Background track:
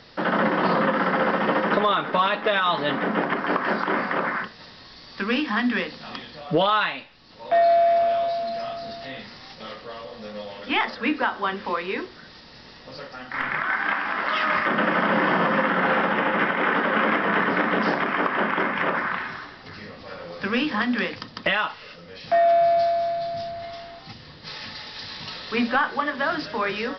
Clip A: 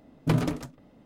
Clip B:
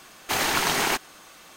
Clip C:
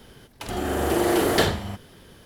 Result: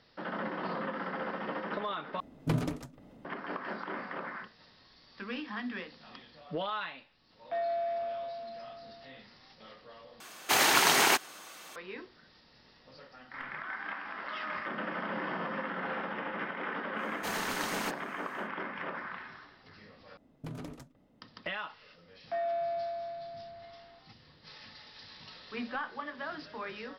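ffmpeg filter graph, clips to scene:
-filter_complex "[1:a]asplit=2[a][b];[2:a]asplit=2[c][d];[0:a]volume=-15dB[e];[a]acompressor=mode=upward:threshold=-39dB:ratio=2.5:attack=3.2:release=140:knee=2.83:detection=peak[f];[c]highpass=f=280:p=1[g];[b]acompressor=threshold=-27dB:ratio=6:attack=2.4:release=154:knee=1:detection=peak[h];[e]asplit=4[i][j][k][l];[i]atrim=end=2.204[m];[f]atrim=end=1.05,asetpts=PTS-STARTPTS,volume=-6dB[n];[j]atrim=start=3.246:end=10.204[o];[g]atrim=end=1.56[p];[k]atrim=start=11.756:end=20.174[q];[h]atrim=end=1.05,asetpts=PTS-STARTPTS,volume=-10dB[r];[l]atrim=start=21.216[s];[d]atrim=end=1.56,asetpts=PTS-STARTPTS,volume=-13.5dB,afade=t=in:d=0.1,afade=t=out:st=1.46:d=0.1,adelay=16940[t];[m][n]acrossfade=d=0.004:c1=hsin:c2=hsin[u];[u][o]acrossfade=d=0.004:c1=hsin:c2=hsin[v];[v][p]acrossfade=d=0.004:c1=hsin:c2=hsin[w];[w][q]acrossfade=d=0.004:c1=hsin:c2=hsin[x];[x][r]acrossfade=d=0.004:c1=hsin:c2=hsin[y];[y][s]acrossfade=d=0.004:c1=hsin:c2=hsin[z];[z][t]amix=inputs=2:normalize=0"

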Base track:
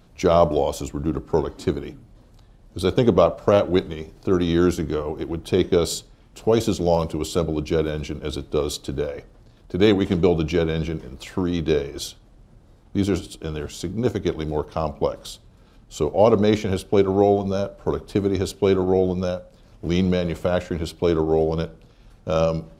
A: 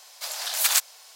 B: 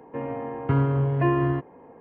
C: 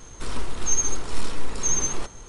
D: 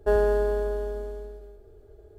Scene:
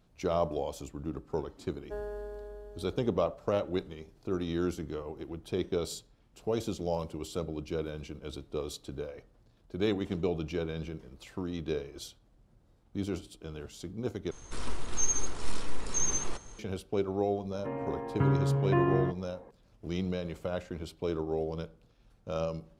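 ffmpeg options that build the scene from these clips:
-filter_complex "[0:a]volume=-13dB,asplit=2[a][b];[a]atrim=end=14.314[c];[3:a]atrim=end=2.28,asetpts=PTS-STARTPTS,volume=-6dB[d];[b]atrim=start=16.586[e];[4:a]atrim=end=2.18,asetpts=PTS-STARTPTS,volume=-17dB,afade=t=in:d=0.004:c=hsin,afade=t=out:st=2.176:d=0.004:c=hsin,adelay=1840[f];[2:a]atrim=end=2,asetpts=PTS-STARTPTS,volume=-5dB,afade=t=in:d=0.004:c=hsin,afade=t=out:st=1.996:d=0.004:c=hsin,adelay=17510[g];[c][d]acrossfade=d=0.004:c1=hsin:c2=hsin[h];[h][e]acrossfade=d=0.004:c1=hsin:c2=hsin[i];[i][f][g]amix=inputs=3:normalize=0"

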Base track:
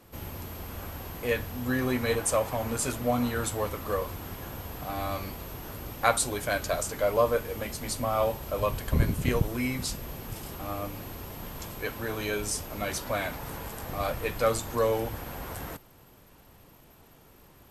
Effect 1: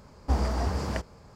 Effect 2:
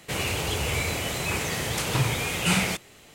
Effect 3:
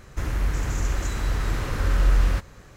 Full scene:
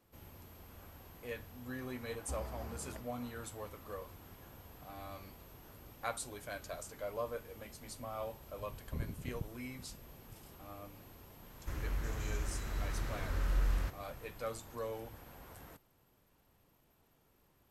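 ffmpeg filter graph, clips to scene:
-filter_complex "[0:a]volume=-15.5dB[a];[1:a]highshelf=f=6.1k:g=-10,atrim=end=1.35,asetpts=PTS-STARTPTS,volume=-18dB,afade=t=in:d=0.004:c=hsin,afade=t=out:st=1.346:d=0.004:c=hsin,adelay=2000[b];[3:a]atrim=end=2.76,asetpts=PTS-STARTPTS,volume=-13dB,afade=t=in:d=0.004:c=hsin,afade=t=out:st=2.756:d=0.004:c=hsin,adelay=11500[c];[a][b][c]amix=inputs=3:normalize=0"

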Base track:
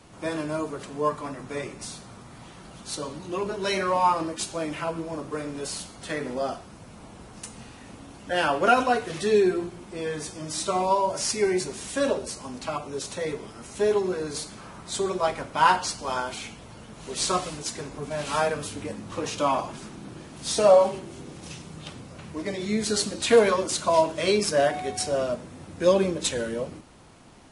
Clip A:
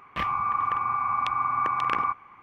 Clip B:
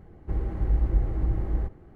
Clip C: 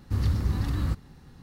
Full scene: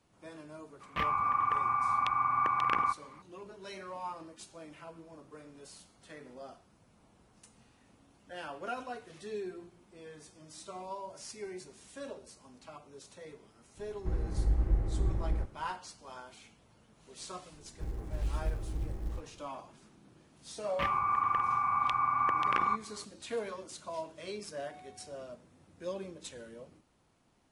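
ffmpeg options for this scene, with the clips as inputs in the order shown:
-filter_complex "[1:a]asplit=2[a][b];[2:a]asplit=2[c][d];[0:a]volume=-19dB[e];[d]acrusher=bits=8:mode=log:mix=0:aa=0.000001[f];[a]atrim=end=2.42,asetpts=PTS-STARTPTS,volume=-3.5dB,afade=t=in:d=0.004:c=hsin,afade=t=out:st=2.416:d=0.004:c=hsin,adelay=800[g];[c]atrim=end=1.95,asetpts=PTS-STARTPTS,volume=-5dB,afade=t=in:d=0.004:c=hsin,afade=t=out:st=1.946:d=0.004:c=hsin,adelay=13770[h];[f]atrim=end=1.95,asetpts=PTS-STARTPTS,volume=-10.5dB,afade=t=in:d=0.004:c=hsin,afade=t=out:st=1.946:d=0.004:c=hsin,adelay=17520[i];[b]atrim=end=2.42,asetpts=PTS-STARTPTS,volume=-3.5dB,afade=t=in:d=0.004:c=hsin,afade=t=out:st=2.416:d=0.004:c=hsin,adelay=20630[j];[e][g][h][i][j]amix=inputs=5:normalize=0"

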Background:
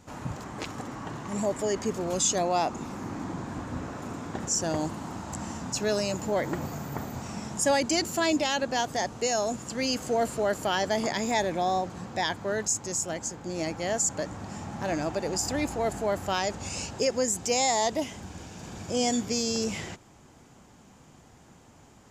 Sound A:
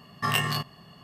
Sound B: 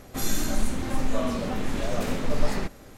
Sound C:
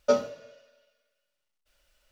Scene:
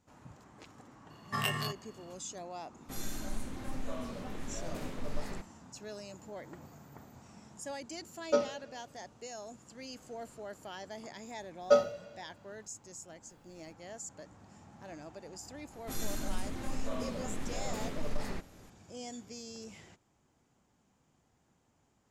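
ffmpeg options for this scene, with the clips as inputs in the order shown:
-filter_complex "[2:a]asplit=2[a][b];[3:a]asplit=2[c][d];[0:a]volume=-18dB[e];[a]agate=range=-33dB:threshold=-35dB:ratio=3:release=100:detection=peak[f];[c]aresample=16000,aresample=44100[g];[d]aecho=1:1:1.5:0.85[h];[b]asoftclip=type=tanh:threshold=-10.5dB[i];[1:a]atrim=end=1.03,asetpts=PTS-STARTPTS,volume=-7.5dB,afade=t=in:d=0.004:c=hsin,afade=t=out:st=1.026:d=0.004:c=hsin,adelay=1100[j];[f]atrim=end=2.97,asetpts=PTS-STARTPTS,volume=-13dB,afade=t=in:d=0.004:c=hsin,afade=t=out:st=2.966:d=0.004:c=hsin,adelay=2740[k];[g]atrim=end=2.11,asetpts=PTS-STARTPTS,volume=-5.5dB,afade=t=in:d=0.004:c=hsin,afade=t=out:st=2.106:d=0.004:c=hsin,adelay=8240[l];[h]atrim=end=2.11,asetpts=PTS-STARTPTS,volume=-5dB,afade=t=in:d=0.004:c=hsin,afade=t=out:st=2.106:d=0.004:c=hsin,adelay=512442S[m];[i]atrim=end=2.97,asetpts=PTS-STARTPTS,volume=-10dB,afade=t=in:d=0.004:c=hsin,afade=t=out:st=2.966:d=0.004:c=hsin,adelay=15730[n];[e][j][k][l][m][n]amix=inputs=6:normalize=0"

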